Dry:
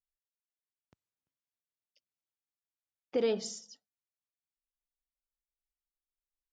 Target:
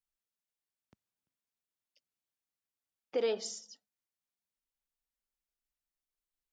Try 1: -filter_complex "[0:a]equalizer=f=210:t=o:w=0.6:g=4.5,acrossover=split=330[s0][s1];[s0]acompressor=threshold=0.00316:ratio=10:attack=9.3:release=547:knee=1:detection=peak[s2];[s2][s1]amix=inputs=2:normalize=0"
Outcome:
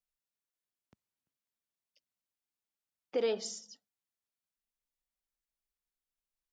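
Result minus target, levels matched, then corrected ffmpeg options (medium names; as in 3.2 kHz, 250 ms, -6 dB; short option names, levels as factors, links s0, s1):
compression: peak gain reduction -8 dB
-filter_complex "[0:a]equalizer=f=210:t=o:w=0.6:g=4.5,acrossover=split=330[s0][s1];[s0]acompressor=threshold=0.00112:ratio=10:attack=9.3:release=547:knee=1:detection=peak[s2];[s2][s1]amix=inputs=2:normalize=0"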